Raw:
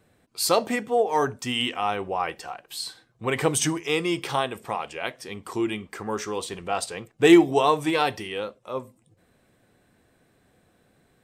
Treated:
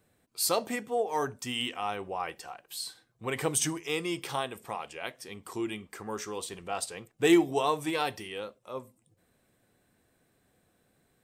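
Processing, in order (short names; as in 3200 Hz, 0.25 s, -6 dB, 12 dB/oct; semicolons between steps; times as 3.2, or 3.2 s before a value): high shelf 7400 Hz +9 dB; gain -7.5 dB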